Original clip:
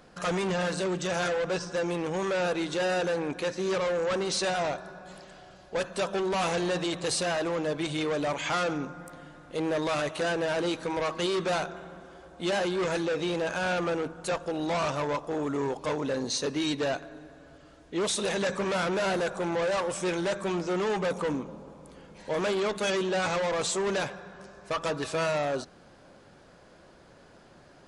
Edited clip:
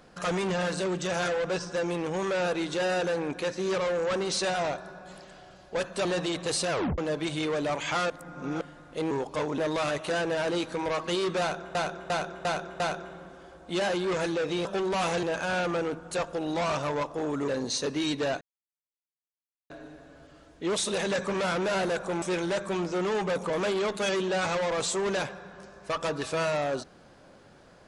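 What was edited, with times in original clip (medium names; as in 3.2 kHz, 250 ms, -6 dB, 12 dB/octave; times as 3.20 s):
6.05–6.63 s: move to 13.36 s
7.28 s: tape stop 0.28 s
8.68–9.19 s: reverse
11.51–11.86 s: loop, 5 plays
15.61–16.08 s: move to 9.69 s
17.01 s: insert silence 1.29 s
19.53–19.97 s: delete
21.25–22.31 s: delete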